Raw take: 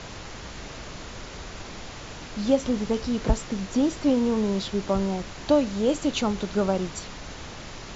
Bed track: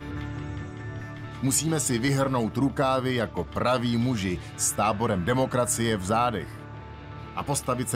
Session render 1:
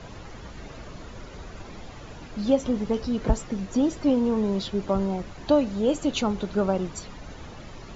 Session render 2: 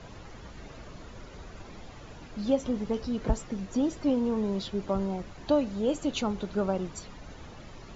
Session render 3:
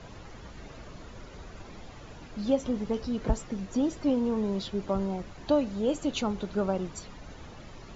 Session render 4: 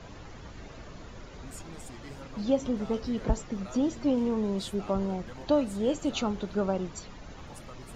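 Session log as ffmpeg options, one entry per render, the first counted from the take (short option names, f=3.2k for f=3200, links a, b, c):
-af "afftdn=nr=10:nf=-40"
-af "volume=-4.5dB"
-af anull
-filter_complex "[1:a]volume=-23dB[a];[0:a][a]amix=inputs=2:normalize=0"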